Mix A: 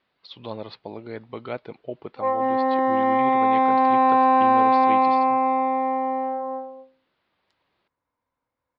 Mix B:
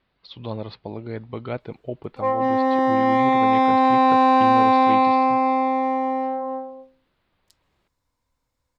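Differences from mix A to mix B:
background: remove LPF 2000 Hz 12 dB/oct; master: remove HPF 330 Hz 6 dB/oct

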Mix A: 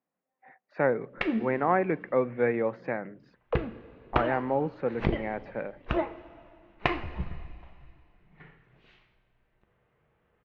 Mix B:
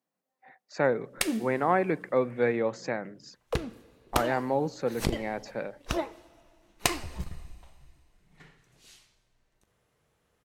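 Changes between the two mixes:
background: send -8.0 dB; master: remove LPF 2600 Hz 24 dB/oct

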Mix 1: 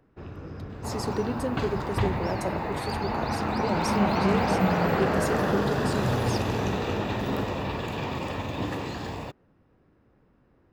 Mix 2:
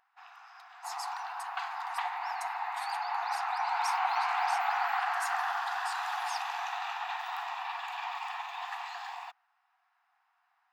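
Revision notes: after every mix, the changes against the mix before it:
speech -4.5 dB; second sound: add high shelf 3800 Hz -9.5 dB; master: add brick-wall FIR high-pass 690 Hz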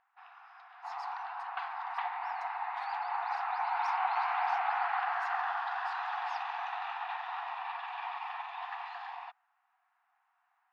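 master: add air absorption 290 m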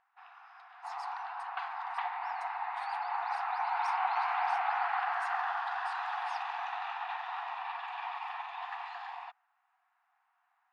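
master: add bell 9000 Hz +15 dB 0.42 oct

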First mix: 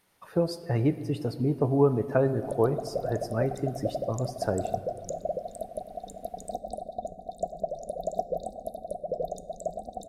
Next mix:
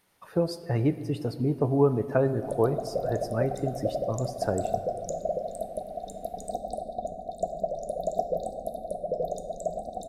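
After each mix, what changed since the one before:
background: send +9.0 dB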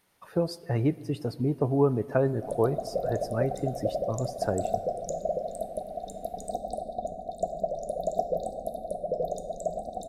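speech: send -6.5 dB

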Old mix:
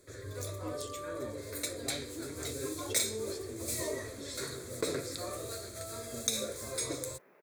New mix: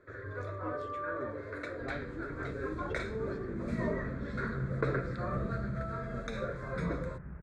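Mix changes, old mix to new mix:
second sound: remove HPF 400 Hz 24 dB/oct; master: add synth low-pass 1500 Hz, resonance Q 3.3

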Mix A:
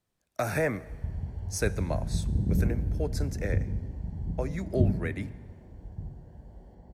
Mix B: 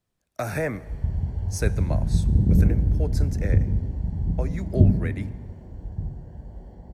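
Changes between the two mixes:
background +5.5 dB; master: add low shelf 190 Hz +3.5 dB

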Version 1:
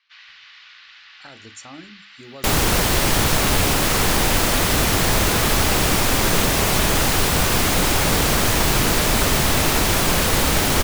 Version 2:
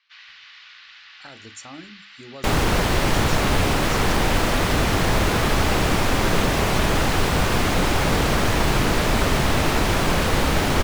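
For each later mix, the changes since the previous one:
second sound: add LPF 2600 Hz 6 dB/oct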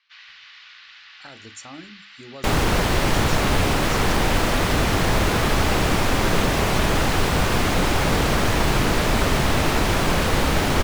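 none

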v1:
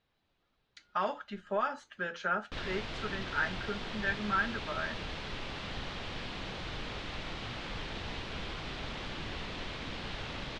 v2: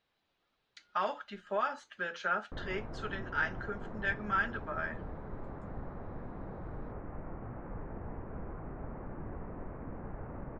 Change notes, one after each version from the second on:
speech: add low shelf 210 Hz -9.5 dB; background: add Gaussian blur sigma 7.3 samples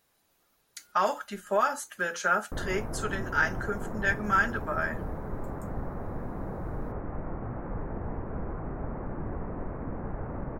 master: remove ladder low-pass 4400 Hz, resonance 35%

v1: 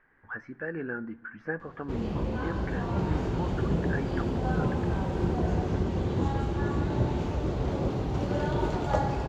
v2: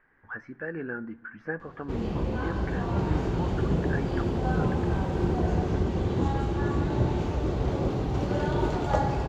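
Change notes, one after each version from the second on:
background: send +11.0 dB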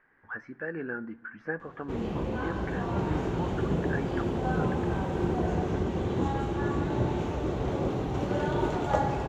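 background: add bell 4700 Hz -6.5 dB 0.37 oct; master: add low shelf 95 Hz -9 dB

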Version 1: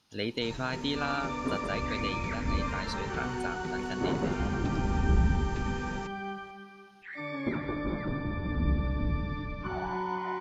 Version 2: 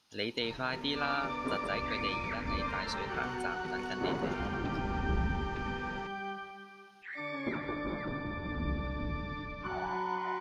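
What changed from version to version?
first sound: add air absorption 190 m; master: add low shelf 300 Hz -8.5 dB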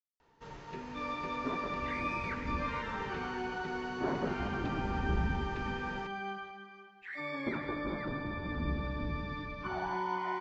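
speech: muted

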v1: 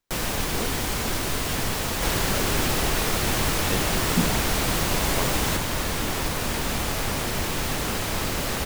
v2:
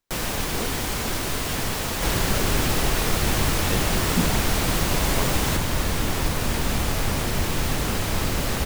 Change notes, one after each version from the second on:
second sound: add low shelf 210 Hz +6 dB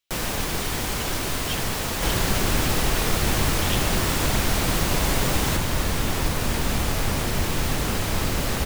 speech: add resonant high-pass 3000 Hz, resonance Q 3.1

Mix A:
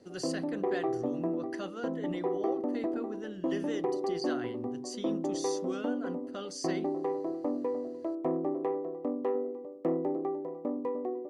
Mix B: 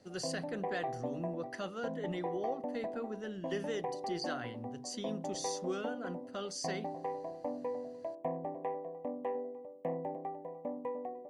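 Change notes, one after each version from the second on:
background: add fixed phaser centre 1300 Hz, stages 6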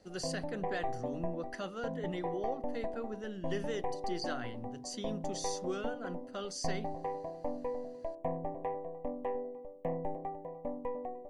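background: remove Chebyshev high-pass 210 Hz, order 2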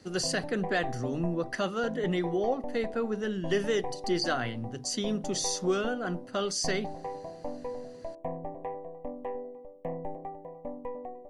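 speech +10.0 dB

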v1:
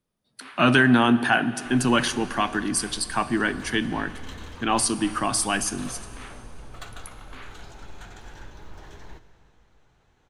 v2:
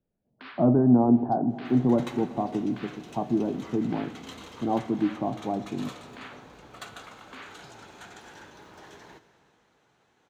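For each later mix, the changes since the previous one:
speech: add steep low-pass 800 Hz 36 dB/oct; second sound: add HPF 190 Hz 12 dB/oct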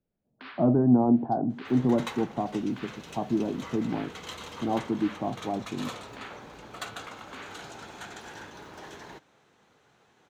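second sound +6.5 dB; reverb: off

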